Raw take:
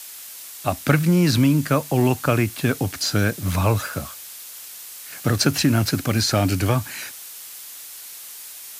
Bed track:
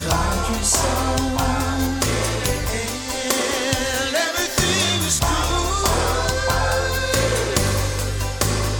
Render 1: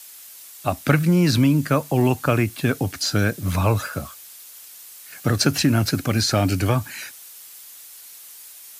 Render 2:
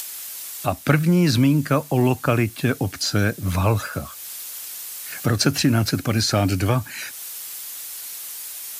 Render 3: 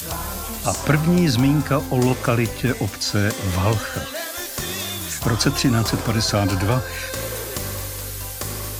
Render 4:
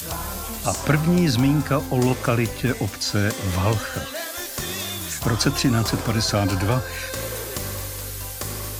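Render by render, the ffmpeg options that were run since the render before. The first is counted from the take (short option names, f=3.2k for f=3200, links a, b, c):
-af "afftdn=nr=6:nf=-39"
-af "acompressor=mode=upward:threshold=-24dB:ratio=2.5"
-filter_complex "[1:a]volume=-9.5dB[a];[0:a][a]amix=inputs=2:normalize=0"
-af "volume=-1.5dB"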